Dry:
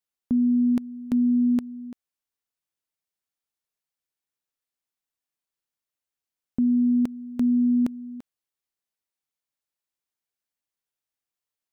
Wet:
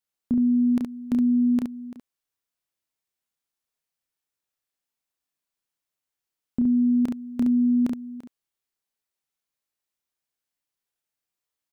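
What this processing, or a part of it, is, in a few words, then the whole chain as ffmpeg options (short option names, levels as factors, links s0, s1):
slapback doubling: -filter_complex "[0:a]asplit=3[s0][s1][s2];[s1]adelay=30,volume=0.562[s3];[s2]adelay=69,volume=0.562[s4];[s0][s3][s4]amix=inputs=3:normalize=0"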